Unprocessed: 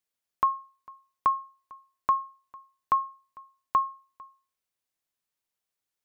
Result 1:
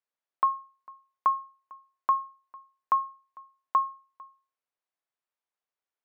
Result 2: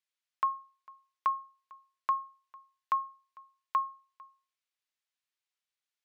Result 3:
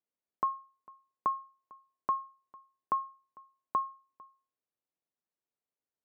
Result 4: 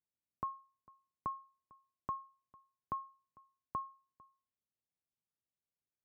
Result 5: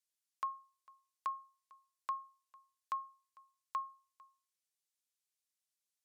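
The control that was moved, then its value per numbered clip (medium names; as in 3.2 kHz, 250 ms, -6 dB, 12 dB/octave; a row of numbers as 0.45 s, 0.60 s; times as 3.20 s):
band-pass filter, frequency: 920 Hz, 2.8 kHz, 350 Hz, 120 Hz, 7.6 kHz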